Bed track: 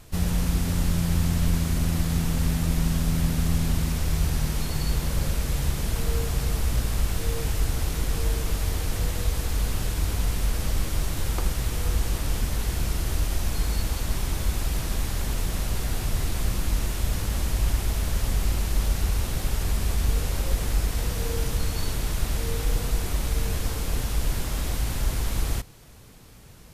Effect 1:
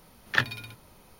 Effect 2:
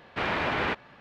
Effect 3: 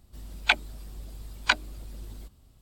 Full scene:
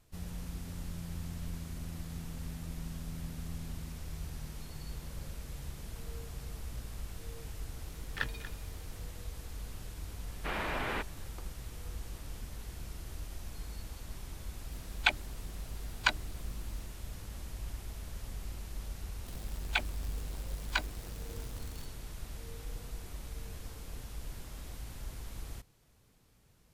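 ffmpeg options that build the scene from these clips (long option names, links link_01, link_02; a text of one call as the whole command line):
ffmpeg -i bed.wav -i cue0.wav -i cue1.wav -i cue2.wav -filter_complex "[3:a]asplit=2[link_01][link_02];[0:a]volume=-17.5dB[link_03];[1:a]aecho=1:1:236:0.2[link_04];[link_02]aeval=exprs='val(0)+0.5*0.0251*sgn(val(0))':channel_layout=same[link_05];[link_04]atrim=end=1.19,asetpts=PTS-STARTPTS,volume=-12dB,afade=type=in:duration=0.004:curve=hsin,afade=type=out:start_time=1.186:duration=0.004:curve=hsin,adelay=7830[link_06];[2:a]atrim=end=1,asetpts=PTS-STARTPTS,volume=-8dB,afade=type=in:duration=0.004:curve=hsin,afade=type=out:start_time=0.996:duration=0.004:curve=hsin,adelay=10280[link_07];[link_01]atrim=end=2.61,asetpts=PTS-STARTPTS,volume=-5.5dB,afade=type=in:duration=0.004:curve=hsin,afade=type=out:start_time=2.606:duration=0.004:curve=hsin,adelay=14570[link_08];[link_05]atrim=end=2.61,asetpts=PTS-STARTPTS,volume=-10.5dB,afade=type=in:duration=0.004:curve=hsin,afade=type=out:start_time=2.606:duration=0.004:curve=hsin,adelay=19260[link_09];[link_03][link_06][link_07][link_08][link_09]amix=inputs=5:normalize=0" out.wav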